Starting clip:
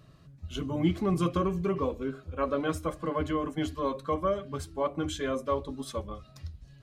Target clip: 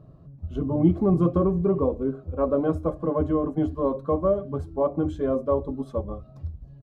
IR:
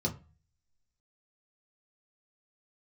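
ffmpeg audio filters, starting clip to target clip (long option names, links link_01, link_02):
-af "firequalizer=gain_entry='entry(680,0);entry(1900,-21);entry(6000,-25)':delay=0.05:min_phase=1,volume=7dB"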